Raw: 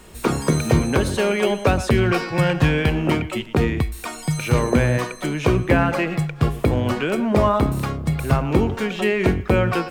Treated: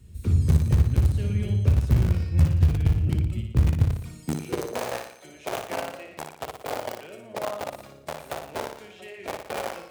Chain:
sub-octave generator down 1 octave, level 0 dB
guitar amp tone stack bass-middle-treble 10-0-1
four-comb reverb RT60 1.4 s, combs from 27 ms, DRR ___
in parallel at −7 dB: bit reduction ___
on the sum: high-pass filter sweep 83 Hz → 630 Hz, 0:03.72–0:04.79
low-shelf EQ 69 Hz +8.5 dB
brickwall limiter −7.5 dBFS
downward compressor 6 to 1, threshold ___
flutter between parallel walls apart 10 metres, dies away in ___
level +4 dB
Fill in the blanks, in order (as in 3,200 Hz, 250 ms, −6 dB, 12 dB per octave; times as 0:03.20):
18.5 dB, 4 bits, −20 dBFS, 0.59 s